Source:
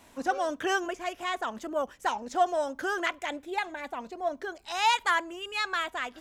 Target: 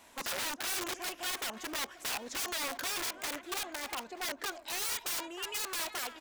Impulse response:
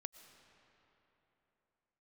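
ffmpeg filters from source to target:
-filter_complex "[0:a]asplit=2[link_01][link_02];[link_02]aecho=0:1:312|624|936:0.0794|0.0365|0.0168[link_03];[link_01][link_03]amix=inputs=2:normalize=0,aeval=exprs='(mod(29.9*val(0)+1,2)-1)/29.9':channel_layout=same,lowshelf=frequency=370:gain=-10,asplit=2[link_04][link_05];[link_05]adelay=931,lowpass=frequency=2600:poles=1,volume=-17dB,asplit=2[link_06][link_07];[link_07]adelay=931,lowpass=frequency=2600:poles=1,volume=0.52,asplit=2[link_08][link_09];[link_09]adelay=931,lowpass=frequency=2600:poles=1,volume=0.52,asplit=2[link_10][link_11];[link_11]adelay=931,lowpass=frequency=2600:poles=1,volume=0.52,asplit=2[link_12][link_13];[link_13]adelay=931,lowpass=frequency=2600:poles=1,volume=0.52[link_14];[link_06][link_08][link_10][link_12][link_14]amix=inputs=5:normalize=0[link_15];[link_04][link_15]amix=inputs=2:normalize=0"

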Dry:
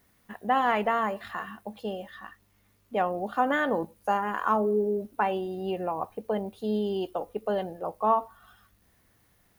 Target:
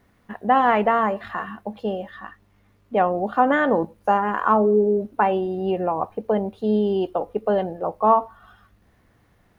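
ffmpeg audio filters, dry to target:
ffmpeg -i in.wav -af "lowpass=frequency=1700:poles=1,volume=8dB" out.wav

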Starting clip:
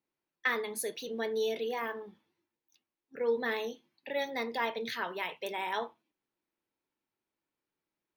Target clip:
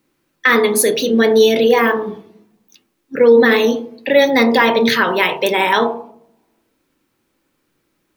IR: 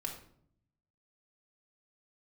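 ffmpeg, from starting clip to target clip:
-filter_complex "[0:a]asplit=2[link_01][link_02];[link_02]lowpass=frequency=1100:width=0.5412,lowpass=frequency=1100:width=1.3066[link_03];[1:a]atrim=start_sample=2205,lowpass=frequency=2300:width=0.5412,lowpass=frequency=2300:width=1.3066[link_04];[link_03][link_04]afir=irnorm=-1:irlink=0,volume=-1.5dB[link_05];[link_01][link_05]amix=inputs=2:normalize=0,alimiter=level_in=22dB:limit=-1dB:release=50:level=0:latency=1,volume=-1dB"

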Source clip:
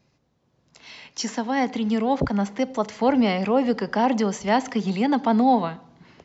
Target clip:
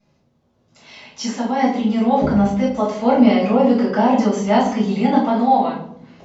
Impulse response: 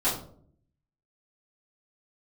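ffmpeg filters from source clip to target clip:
-filter_complex "[0:a]asplit=3[link_01][link_02][link_03];[link_01]afade=type=out:start_time=5.18:duration=0.02[link_04];[link_02]highpass=frequency=420:poles=1,afade=type=in:start_time=5.18:duration=0.02,afade=type=out:start_time=5.7:duration=0.02[link_05];[link_03]afade=type=in:start_time=5.7:duration=0.02[link_06];[link_04][link_05][link_06]amix=inputs=3:normalize=0[link_07];[1:a]atrim=start_sample=2205,asetrate=36162,aresample=44100[link_08];[link_07][link_08]afir=irnorm=-1:irlink=0,volume=-9dB"

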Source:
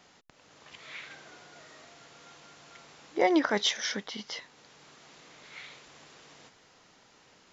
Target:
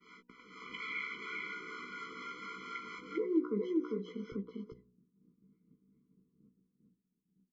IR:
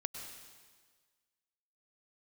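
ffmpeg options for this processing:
-filter_complex "[0:a]lowshelf=frequency=160:width_type=q:width=3:gain=-7,asetnsamples=nb_out_samples=441:pad=0,asendcmd='2.99 lowpass f 600;4.32 lowpass f 160',lowpass=frequency=2000:width_type=q:width=1.9,acrossover=split=590[link_01][link_02];[link_01]aeval=exprs='val(0)*(1-0.5/2+0.5/2*cos(2*PI*4.2*n/s))':channel_layout=same[link_03];[link_02]aeval=exprs='val(0)*(1-0.5/2-0.5/2*cos(2*PI*4.2*n/s))':channel_layout=same[link_04];[link_03][link_04]amix=inputs=2:normalize=0,agate=range=-33dB:threshold=-56dB:ratio=3:detection=peak,asplit=2[link_05][link_06];[link_06]adelay=16,volume=-5dB[link_07];[link_05][link_07]amix=inputs=2:normalize=0,aecho=1:1:399:0.631,acompressor=threshold=-47dB:ratio=2,aemphasis=mode=production:type=75fm,bandreject=frequency=60.35:width_type=h:width=4,bandreject=frequency=120.7:width_type=h:width=4,bandreject=frequency=181.05:width_type=h:width=4,bandreject=frequency=241.4:width_type=h:width=4,bandreject=frequency=301.75:width_type=h:width=4,bandreject=frequency=362.1:width_type=h:width=4,bandreject=frequency=422.45:width_type=h:width=4,bandreject=frequency=482.8:width_type=h:width=4,bandreject=frequency=543.15:width_type=h:width=4,bandreject=frequency=603.5:width_type=h:width=4,bandreject=frequency=663.85:width_type=h:width=4,bandreject=frequency=724.2:width_type=h:width=4,bandreject=frequency=784.55:width_type=h:width=4,bandreject=frequency=844.9:width_type=h:width=4,bandreject=frequency=905.25:width_type=h:width=4,bandreject=frequency=965.6:width_type=h:width=4,afftfilt=real='re*eq(mod(floor(b*sr/1024/490),2),0)':imag='im*eq(mod(floor(b*sr/1024/490),2),0)':win_size=1024:overlap=0.75,volume=7.5dB"

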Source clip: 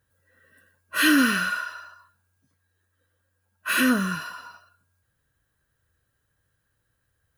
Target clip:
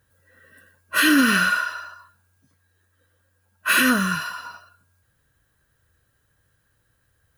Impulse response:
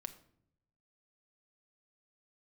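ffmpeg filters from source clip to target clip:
-filter_complex "[0:a]asettb=1/sr,asplit=3[link_01][link_02][link_03];[link_01]atrim=end=3.794[link_04];[link_02]atrim=start=3.79:end=4.45,asetpts=PTS-STARTPTS,afade=type=in:duration=0.004:curve=qsin,afade=type=out:start_time=0.656:duration=0.004:curve=qsin,equalizer=frequency=330:width=0.73:gain=-7[link_05];[link_03]atrim=start=4.446[link_06];[link_04][link_05]acrossfade=duration=0.004:curve1=hsin:curve2=qsin[link_07];[link_07][link_06]acrossfade=duration=0.004:curve1=qsin:curve2=hsin,alimiter=level_in=13.5dB:limit=-1dB:release=50:level=0:latency=1,volume=-7dB"

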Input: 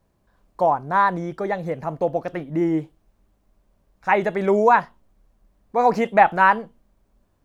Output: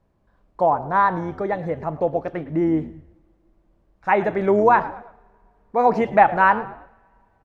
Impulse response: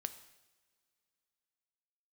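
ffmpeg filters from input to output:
-filter_complex "[0:a]aemphasis=mode=reproduction:type=75kf,asplit=4[link_01][link_02][link_03][link_04];[link_02]adelay=110,afreqshift=-83,volume=-17dB[link_05];[link_03]adelay=220,afreqshift=-166,volume=-25.2dB[link_06];[link_04]adelay=330,afreqshift=-249,volume=-33.4dB[link_07];[link_01][link_05][link_06][link_07]amix=inputs=4:normalize=0,asplit=2[link_08][link_09];[1:a]atrim=start_sample=2205[link_10];[link_09][link_10]afir=irnorm=-1:irlink=0,volume=0dB[link_11];[link_08][link_11]amix=inputs=2:normalize=0,volume=-4dB"

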